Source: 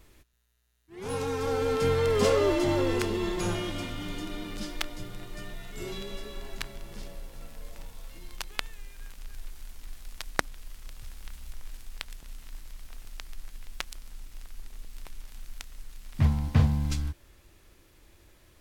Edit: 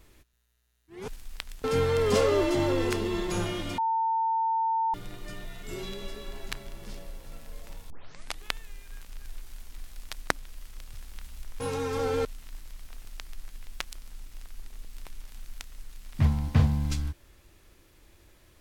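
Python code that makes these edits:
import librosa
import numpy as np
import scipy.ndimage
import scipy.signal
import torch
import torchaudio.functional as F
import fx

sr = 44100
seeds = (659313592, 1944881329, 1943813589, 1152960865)

y = fx.edit(x, sr, fx.swap(start_s=1.08, length_s=0.65, other_s=11.69, other_length_s=0.56),
    fx.bleep(start_s=3.87, length_s=1.16, hz=900.0, db=-23.5),
    fx.tape_start(start_s=7.99, length_s=0.52), tone=tone)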